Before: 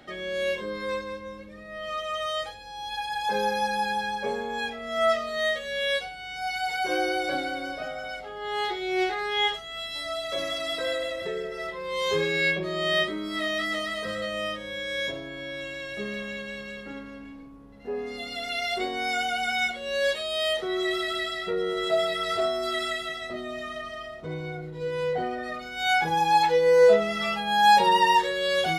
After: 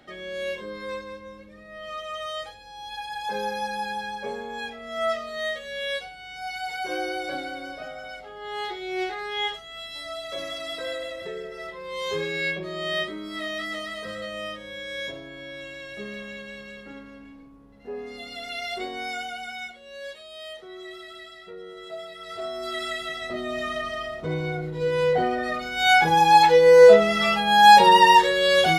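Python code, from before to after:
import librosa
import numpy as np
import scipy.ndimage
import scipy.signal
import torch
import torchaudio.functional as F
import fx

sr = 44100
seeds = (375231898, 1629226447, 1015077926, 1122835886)

y = fx.gain(x, sr, db=fx.line((19.0, -3.0), (19.89, -13.0), (22.15, -13.0), (22.61, -3.5), (23.64, 6.0)))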